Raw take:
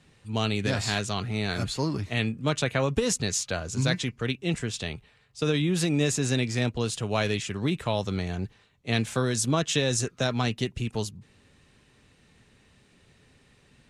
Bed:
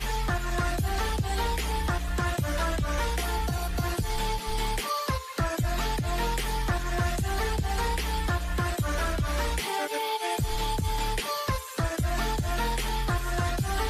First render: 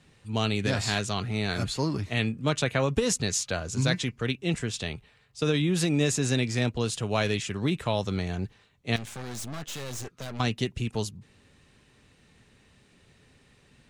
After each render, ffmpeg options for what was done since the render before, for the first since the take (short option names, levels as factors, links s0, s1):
-filter_complex "[0:a]asettb=1/sr,asplit=3[s0][s1][s2];[s0]atrim=end=8.964[s3];[s1]atrim=start=8.96:end=10.4,asetpts=PTS-STARTPTS,afade=t=in:d=0.004:c=qsin,afade=t=out:st=1.436:d=0.004:c=qsin,aeval=exprs='(tanh(56.2*val(0)+0.75)-tanh(0.75))/56.2':c=same[s4];[s2]atrim=start=10.396[s5];[s3][s4]acrossfade=d=0.004:c1=hsin:c2=qsin[s6];[s6][s5]acrossfade=d=0.004:c1=qsin:c2=hsin"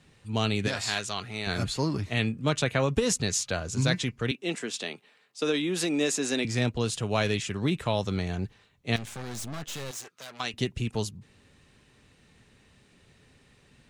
-filter_complex "[0:a]asettb=1/sr,asplit=3[s0][s1][s2];[s0]atrim=end=0.684[s3];[s1]atrim=start=0.68:end=1.47,asetpts=PTS-STARTPTS,afade=t=in:d=0.004:c=qsin,afade=t=out:st=0.786:d=0.004:c=qsin,lowshelf=f=410:g=-11.5[s4];[s2]atrim=start=1.466[s5];[s3][s4]acrossfade=d=0.004:c1=hsin:c2=qsin[s6];[s6][s5]acrossfade=d=0.004:c1=qsin:c2=hsin,asettb=1/sr,asplit=3[s7][s8][s9];[s7]atrim=end=4.314[s10];[s8]atrim=start=4.31:end=6.45,asetpts=PTS-STARTPTS,afade=t=in:d=0.004:c=qsin,afade=t=out:st=2.136:d=0.004:c=qsin,highpass=f=230:w=0.5412,highpass=f=230:w=1.3066[s11];[s9]atrim=start=6.446[s12];[s10][s11]acrossfade=d=0.004:c1=hsin:c2=qsin[s13];[s13][s12]acrossfade=d=0.004:c1=qsin:c2=hsin,asettb=1/sr,asplit=3[s14][s15][s16];[s14]atrim=end=9.914[s17];[s15]atrim=start=9.91:end=10.54,asetpts=PTS-STARTPTS,afade=t=in:d=0.004:c=qsin,afade=t=out:st=0.626:d=0.004:c=qsin,highpass=f=1100:p=1[s18];[s16]atrim=start=10.536[s19];[s17][s18]acrossfade=d=0.004:c1=hsin:c2=qsin[s20];[s20][s19]acrossfade=d=0.004:c1=qsin:c2=hsin"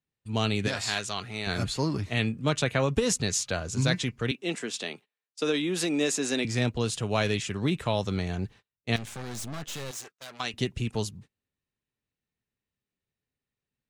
-af "agate=range=0.0282:threshold=0.00447:ratio=16:detection=peak"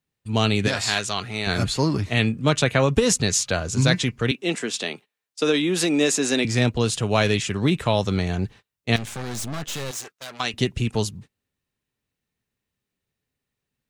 -af "volume=2.11"